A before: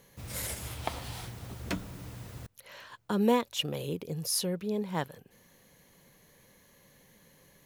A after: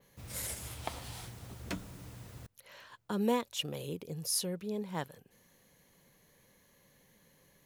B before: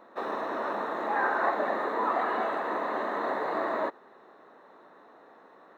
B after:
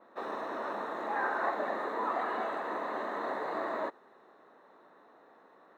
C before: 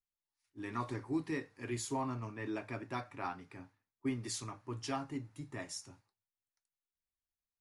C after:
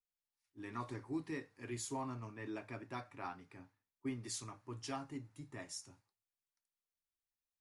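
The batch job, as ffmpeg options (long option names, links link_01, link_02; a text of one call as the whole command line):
ffmpeg -i in.wav -af "adynamicequalizer=threshold=0.00251:dfrequency=8500:dqfactor=0.76:tfrequency=8500:tqfactor=0.76:attack=5:release=100:ratio=0.375:range=2:mode=boostabove:tftype=bell,volume=-5dB" out.wav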